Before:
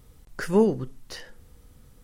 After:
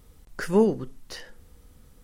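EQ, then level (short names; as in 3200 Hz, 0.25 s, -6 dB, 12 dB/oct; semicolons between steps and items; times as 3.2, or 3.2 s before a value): bell 120 Hz -7 dB 0.31 oct; 0.0 dB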